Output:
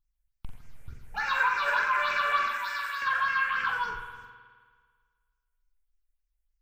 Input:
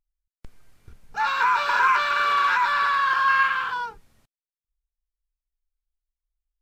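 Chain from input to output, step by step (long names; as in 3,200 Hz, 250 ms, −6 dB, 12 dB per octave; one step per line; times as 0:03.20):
0:02.48–0:03.02: first-order pre-emphasis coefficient 0.9
downward compressor, threshold −24 dBFS, peak gain reduction 9 dB
all-pass phaser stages 6, 3.4 Hz, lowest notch 250–1,100 Hz
flutter between parallel walls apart 7.5 metres, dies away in 0.38 s
spring reverb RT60 1.7 s, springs 52 ms, chirp 60 ms, DRR 6.5 dB
level +2.5 dB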